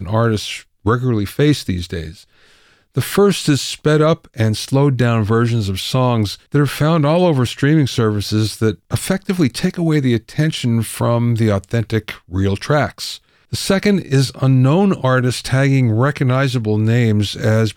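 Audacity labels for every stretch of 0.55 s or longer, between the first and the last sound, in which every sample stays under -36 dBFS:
2.220000	2.950000	silence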